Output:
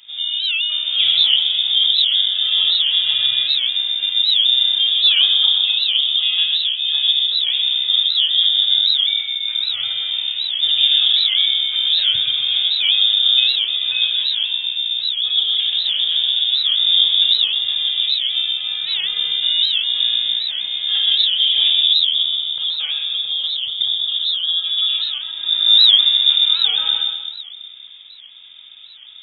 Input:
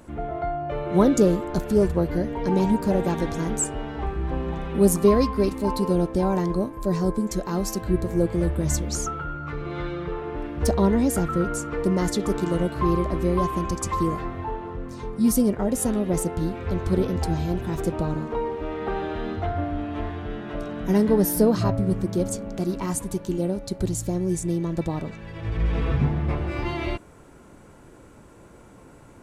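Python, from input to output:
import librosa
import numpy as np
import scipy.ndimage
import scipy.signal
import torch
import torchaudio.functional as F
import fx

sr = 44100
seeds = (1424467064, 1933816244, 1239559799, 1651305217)

y = fx.low_shelf(x, sr, hz=110.0, db=6.5)
y = fx.echo_feedback(y, sr, ms=126, feedback_pct=47, wet_db=-5.5)
y = fx.room_shoebox(y, sr, seeds[0], volume_m3=2900.0, walls='furnished', distance_m=3.6)
y = fx.freq_invert(y, sr, carrier_hz=3600)
y = fx.record_warp(y, sr, rpm=78.0, depth_cents=160.0)
y = y * 10.0 ** (-3.5 / 20.0)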